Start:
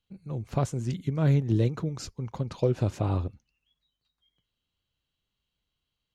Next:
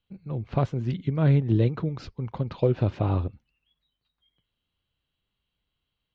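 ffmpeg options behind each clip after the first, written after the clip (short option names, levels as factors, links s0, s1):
-af "lowpass=f=3900:w=0.5412,lowpass=f=3900:w=1.3066,volume=1.33"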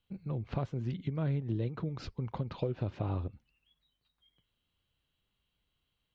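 -af "acompressor=threshold=0.02:ratio=3"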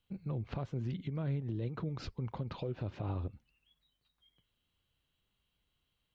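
-af "alimiter=level_in=1.78:limit=0.0631:level=0:latency=1:release=71,volume=0.562"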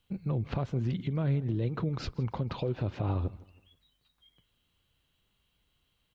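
-af "aecho=1:1:160|320|480:0.0891|0.033|0.0122,volume=2.11"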